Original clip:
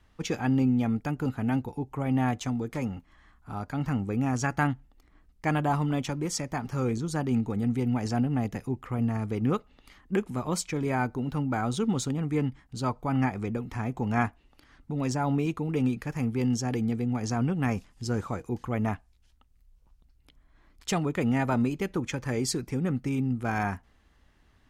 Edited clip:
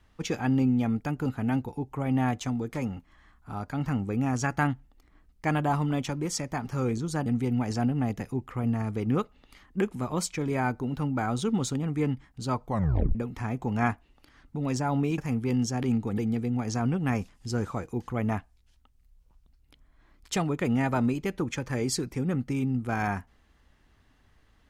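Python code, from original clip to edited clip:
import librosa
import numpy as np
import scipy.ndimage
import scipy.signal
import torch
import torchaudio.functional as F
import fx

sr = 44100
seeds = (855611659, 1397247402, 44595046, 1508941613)

y = fx.edit(x, sr, fx.move(start_s=7.26, length_s=0.35, to_s=16.74),
    fx.tape_stop(start_s=13.02, length_s=0.48),
    fx.cut(start_s=15.53, length_s=0.56), tone=tone)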